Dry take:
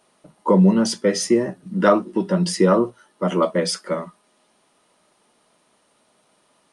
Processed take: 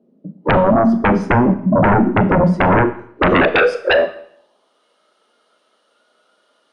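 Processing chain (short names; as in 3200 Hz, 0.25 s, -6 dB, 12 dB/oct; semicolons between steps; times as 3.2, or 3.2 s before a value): HPF 42 Hz; band-pass sweep 210 Hz -> 1400 Hz, 2.6–4.85; graphic EQ 250/500/1000/2000/8000 Hz +6/+10/-8/-6/-4 dB; compressor 12:1, threshold -18 dBFS, peak gain reduction 11.5 dB; sine folder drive 16 dB, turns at -9 dBFS; spectral noise reduction 10 dB; on a send: reverb RT60 0.65 s, pre-delay 27 ms, DRR 11.5 dB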